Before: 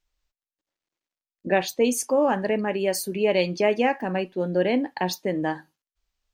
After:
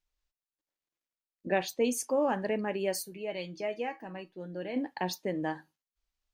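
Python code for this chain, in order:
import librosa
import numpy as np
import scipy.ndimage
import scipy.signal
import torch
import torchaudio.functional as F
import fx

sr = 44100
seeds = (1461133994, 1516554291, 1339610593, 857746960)

y = fx.comb_fb(x, sr, f0_hz=160.0, decay_s=0.16, harmonics='all', damping=0.0, mix_pct=80, at=(3.02, 4.75), fade=0.02)
y = y * 10.0 ** (-7.0 / 20.0)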